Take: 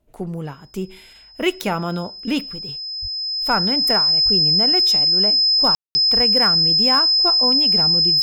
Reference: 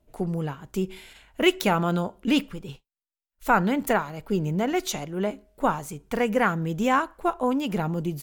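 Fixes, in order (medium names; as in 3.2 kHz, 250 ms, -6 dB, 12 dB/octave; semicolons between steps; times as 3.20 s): clip repair -8 dBFS; band-stop 5.1 kHz, Q 30; de-plosive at 3.01/4.24/6.15 s; room tone fill 5.75–5.95 s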